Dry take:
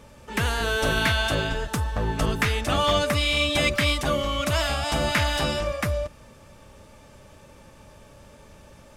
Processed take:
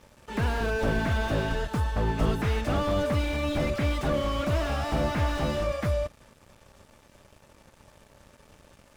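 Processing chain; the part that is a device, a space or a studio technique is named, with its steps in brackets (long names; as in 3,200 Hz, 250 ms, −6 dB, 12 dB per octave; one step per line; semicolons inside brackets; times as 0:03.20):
early transistor amplifier (dead-zone distortion −50.5 dBFS; slew-rate limiting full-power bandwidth 41 Hz)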